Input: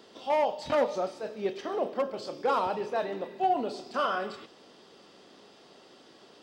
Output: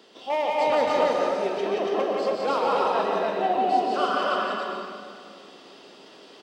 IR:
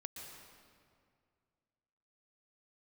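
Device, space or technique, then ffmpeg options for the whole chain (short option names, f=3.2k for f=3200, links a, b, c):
stadium PA: -filter_complex "[0:a]highpass=170,equalizer=f=2.8k:t=o:w=0.83:g=4,aecho=1:1:174.9|282.8:0.708|0.891[a];[1:a]atrim=start_sample=2205[b];[a][b]afir=irnorm=-1:irlink=0,volume=5.5dB"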